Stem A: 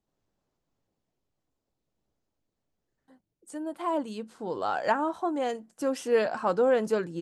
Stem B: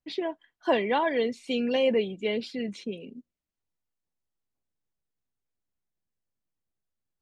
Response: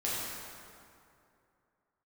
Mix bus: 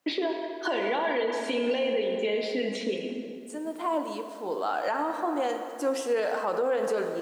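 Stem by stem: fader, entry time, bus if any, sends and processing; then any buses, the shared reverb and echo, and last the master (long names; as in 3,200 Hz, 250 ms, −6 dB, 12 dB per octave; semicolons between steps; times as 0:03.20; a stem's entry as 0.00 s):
0.0 dB, 0.00 s, send −11 dB, no processing
−2.0 dB, 0.00 s, send −6.5 dB, multiband upward and downward compressor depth 100%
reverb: on, RT60 2.6 s, pre-delay 3 ms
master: high-pass filter 310 Hz 12 dB per octave; brickwall limiter −19 dBFS, peak gain reduction 9 dB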